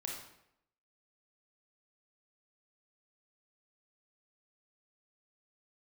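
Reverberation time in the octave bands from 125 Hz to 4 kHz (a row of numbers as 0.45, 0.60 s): 0.75, 0.80, 0.80, 0.75, 0.70, 0.60 s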